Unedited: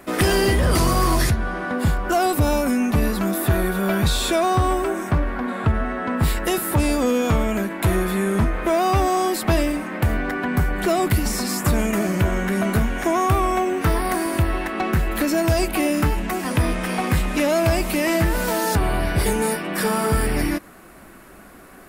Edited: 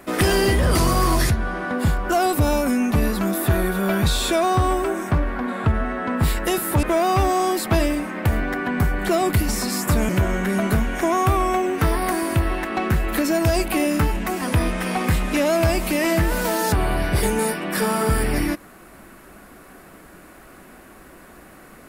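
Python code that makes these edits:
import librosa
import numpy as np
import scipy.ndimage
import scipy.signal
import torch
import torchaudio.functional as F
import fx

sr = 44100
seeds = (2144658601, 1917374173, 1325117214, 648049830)

y = fx.edit(x, sr, fx.cut(start_s=6.83, length_s=1.77),
    fx.cut(start_s=11.86, length_s=0.26), tone=tone)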